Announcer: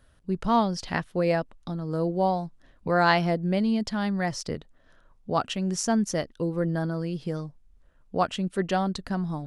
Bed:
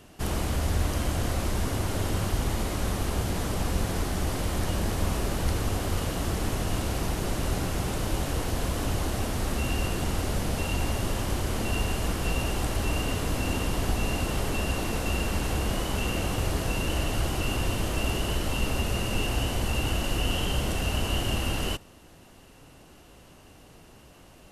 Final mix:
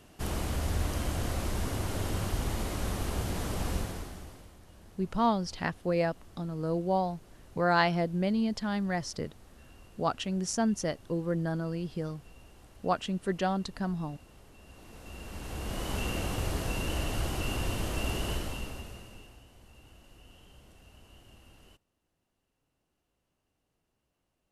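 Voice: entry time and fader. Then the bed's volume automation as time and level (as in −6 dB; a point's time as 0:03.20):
4.70 s, −4.0 dB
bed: 0:03.75 −4.5 dB
0:04.59 −27 dB
0:14.57 −27 dB
0:15.91 −4.5 dB
0:18.33 −4.5 dB
0:19.44 −28.5 dB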